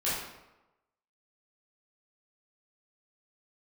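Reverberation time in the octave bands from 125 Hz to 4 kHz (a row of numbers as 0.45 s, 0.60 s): 0.85 s, 0.95 s, 1.0 s, 1.0 s, 0.80 s, 0.65 s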